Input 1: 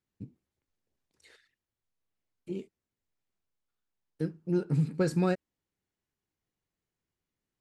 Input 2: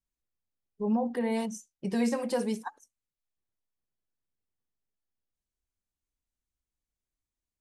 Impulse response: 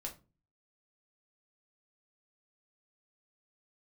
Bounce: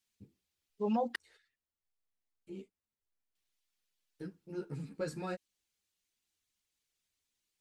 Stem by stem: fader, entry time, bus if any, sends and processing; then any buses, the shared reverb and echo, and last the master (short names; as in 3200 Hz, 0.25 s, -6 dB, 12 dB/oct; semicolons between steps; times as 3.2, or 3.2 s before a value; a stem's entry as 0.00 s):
-4.0 dB, 0.00 s, no send, ensemble effect
+1.0 dB, 0.00 s, muted 1.16–3.35, no send, weighting filter D; reverb removal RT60 0.53 s; high shelf 7500 Hz +6.5 dB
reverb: off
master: bell 180 Hz -4 dB 2.5 oct